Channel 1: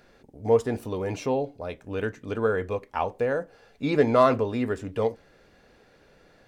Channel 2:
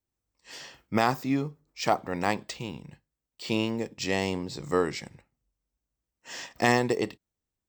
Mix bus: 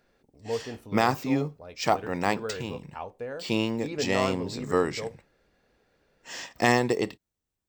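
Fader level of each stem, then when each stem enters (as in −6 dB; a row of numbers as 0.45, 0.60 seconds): −10.5, +1.0 decibels; 0.00, 0.00 seconds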